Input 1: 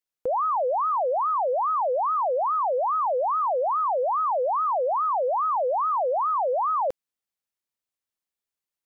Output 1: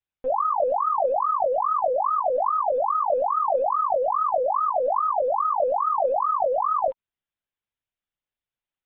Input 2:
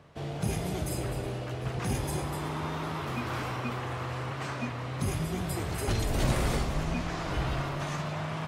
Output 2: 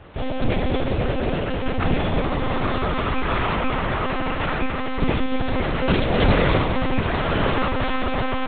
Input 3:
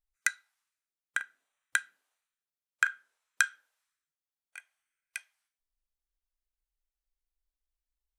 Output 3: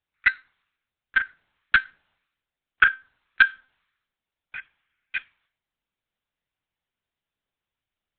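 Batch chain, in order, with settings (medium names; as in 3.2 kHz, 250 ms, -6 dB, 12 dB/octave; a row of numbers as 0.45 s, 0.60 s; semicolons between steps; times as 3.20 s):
high-pass 120 Hz 12 dB/octave; band-stop 930 Hz, Q 10; in parallel at -6 dB: hard clipper -21.5 dBFS; on the sum: monotone LPC vocoder at 8 kHz 260 Hz; normalise loudness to -23 LUFS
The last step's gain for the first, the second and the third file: -2.5 dB, +9.5 dB, +8.5 dB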